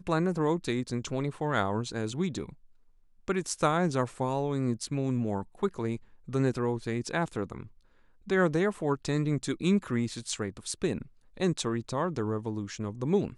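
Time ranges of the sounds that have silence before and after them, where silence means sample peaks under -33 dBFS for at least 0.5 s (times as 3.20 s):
3.28–7.62 s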